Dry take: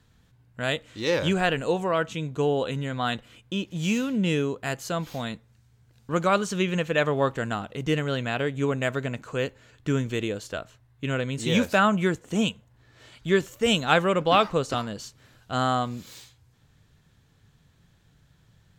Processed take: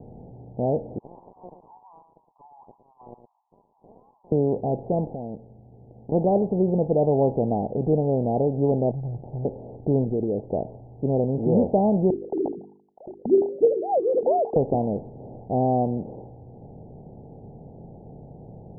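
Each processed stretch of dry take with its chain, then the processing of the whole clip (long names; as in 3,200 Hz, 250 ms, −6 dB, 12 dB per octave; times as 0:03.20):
0:00.98–0:04.32: Butterworth high-pass 1,000 Hz 96 dB per octave + de-essing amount 90% + single-tap delay 113 ms −16 dB
0:05.07–0:06.12: mu-law and A-law mismatch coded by A + low-pass filter 1,000 Hz + downward compressor 4 to 1, threshold −44 dBFS
0:08.91–0:09.45: linear-phase brick-wall band-stop 160–3,200 Hz + high-shelf EQ 8,600 Hz +10 dB + windowed peak hold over 3 samples
0:10.04–0:10.49: spectral envelope exaggerated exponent 1.5 + downward compressor 2.5 to 1, threshold −30 dBFS
0:12.10–0:14.56: three sine waves on the formant tracks + mains-hum notches 50/100/150/200/250/300/350/400/450 Hz + single-tap delay 973 ms −21.5 dB
whole clip: compressor on every frequency bin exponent 0.6; Butterworth low-pass 860 Hz 96 dB per octave; low-shelf EQ 68 Hz +6.5 dB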